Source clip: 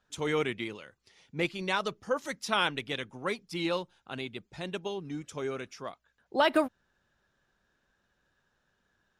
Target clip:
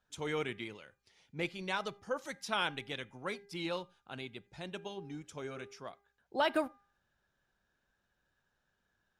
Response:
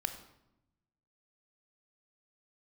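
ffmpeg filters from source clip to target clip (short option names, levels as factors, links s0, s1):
-filter_complex "[0:a]bandreject=f=402.8:t=h:w=4,bandreject=f=805.6:t=h:w=4,bandreject=f=1208.4:t=h:w=4,bandreject=f=1611.2:t=h:w=4,bandreject=f=2014:t=h:w=4,bandreject=f=2416.8:t=h:w=4,asplit=2[s0][s1];[1:a]atrim=start_sample=2205,atrim=end_sample=4410[s2];[s1][s2]afir=irnorm=-1:irlink=0,volume=0.168[s3];[s0][s3]amix=inputs=2:normalize=0,volume=0.447"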